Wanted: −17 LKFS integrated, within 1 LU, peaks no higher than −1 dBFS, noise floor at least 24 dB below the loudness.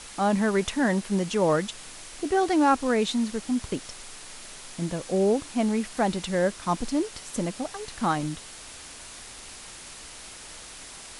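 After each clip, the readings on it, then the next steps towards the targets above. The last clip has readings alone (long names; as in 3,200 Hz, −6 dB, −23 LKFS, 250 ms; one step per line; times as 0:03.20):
background noise floor −44 dBFS; target noise floor −51 dBFS; integrated loudness −26.5 LKFS; sample peak −11.0 dBFS; target loudness −17.0 LKFS
→ noise reduction from a noise print 7 dB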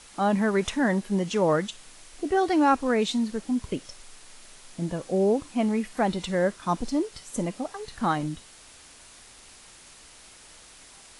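background noise floor −51 dBFS; integrated loudness −26.5 LKFS; sample peak −11.0 dBFS; target loudness −17.0 LKFS
→ level +9.5 dB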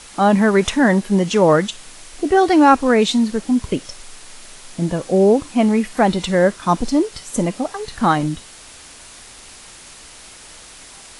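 integrated loudness −17.0 LKFS; sample peak −1.5 dBFS; background noise floor −41 dBFS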